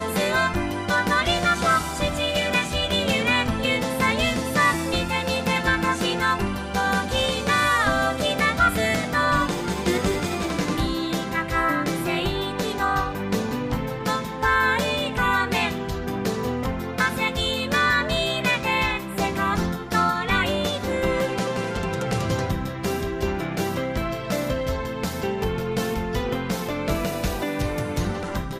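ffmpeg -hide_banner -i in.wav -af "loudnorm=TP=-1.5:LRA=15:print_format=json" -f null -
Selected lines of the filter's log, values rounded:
"input_i" : "-23.5",
"input_tp" : "-9.1",
"input_lra" : "5.1",
"input_thresh" : "-33.5",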